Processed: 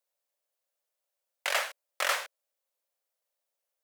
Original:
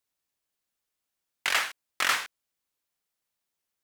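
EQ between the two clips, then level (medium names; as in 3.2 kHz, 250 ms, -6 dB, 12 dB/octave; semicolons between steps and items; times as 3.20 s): resonant high-pass 560 Hz, resonance Q 4.9; treble shelf 7.8 kHz +4.5 dB; -5.0 dB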